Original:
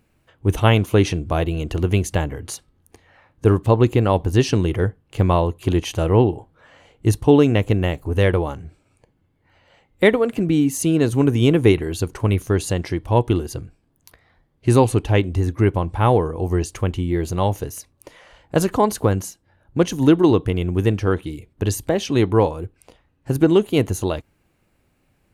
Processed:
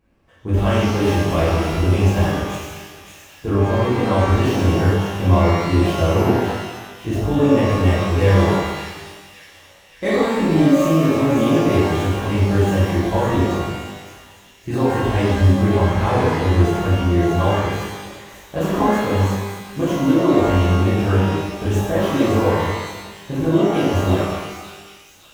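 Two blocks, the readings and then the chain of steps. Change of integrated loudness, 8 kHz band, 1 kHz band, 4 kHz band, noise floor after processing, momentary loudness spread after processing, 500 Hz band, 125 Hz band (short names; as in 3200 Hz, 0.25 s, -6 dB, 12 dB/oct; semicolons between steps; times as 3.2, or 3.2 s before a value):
+1.5 dB, -3.0 dB, +3.5 dB, +1.5 dB, -47 dBFS, 14 LU, +0.5 dB, +2.0 dB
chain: median filter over 9 samples; limiter -11 dBFS, peak gain reduction 8.5 dB; thin delay 0.562 s, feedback 56%, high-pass 2500 Hz, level -6 dB; shimmer reverb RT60 1.2 s, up +12 st, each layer -8 dB, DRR -10.5 dB; gain -7 dB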